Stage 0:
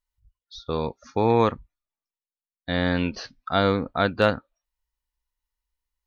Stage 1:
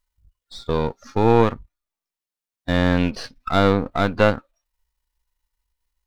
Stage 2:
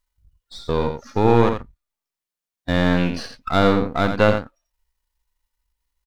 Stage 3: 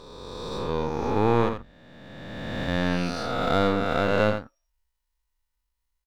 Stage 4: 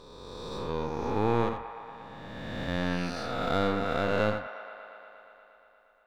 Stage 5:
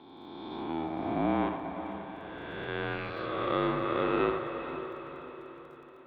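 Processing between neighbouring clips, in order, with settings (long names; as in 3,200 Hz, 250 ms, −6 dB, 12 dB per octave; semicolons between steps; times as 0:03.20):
gain on one half-wave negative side −7 dB; harmonic and percussive parts rebalanced harmonic +7 dB; in parallel at −2 dB: downward compressor, threshold −24 dBFS, peak gain reduction 13.5 dB; on the sum: level −1 dB
single-tap delay 85 ms −7.5 dB
peak hold with a rise ahead of every peak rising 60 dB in 2.16 s; level −8 dB
delay with a band-pass on its return 118 ms, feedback 80%, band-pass 1,300 Hz, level −11 dB; level −5 dB
single-sideband voice off tune −150 Hz 320–3,500 Hz; surface crackle 16 per second −55 dBFS; feedback delay with all-pass diffusion 491 ms, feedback 49%, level −10 dB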